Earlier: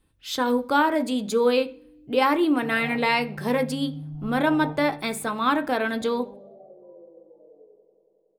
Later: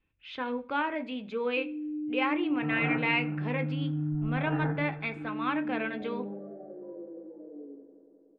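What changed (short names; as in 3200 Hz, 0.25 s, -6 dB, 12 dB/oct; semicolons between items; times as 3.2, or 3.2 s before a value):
speech: add ladder low-pass 2800 Hz, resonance 65%; background: remove fixed phaser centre 670 Hz, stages 4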